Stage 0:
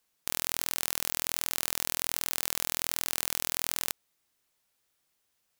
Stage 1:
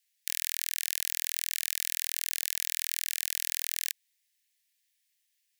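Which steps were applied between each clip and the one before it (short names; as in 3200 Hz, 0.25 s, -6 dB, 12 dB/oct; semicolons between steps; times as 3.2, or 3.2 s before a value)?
steep high-pass 1700 Hz 96 dB/oct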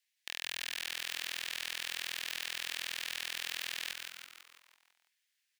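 soft clip -12 dBFS, distortion -9 dB; frequency-shifting echo 0.166 s, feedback 53%, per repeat -140 Hz, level -5 dB; overdrive pedal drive 12 dB, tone 2700 Hz, clips at -5 dBFS; gain -5.5 dB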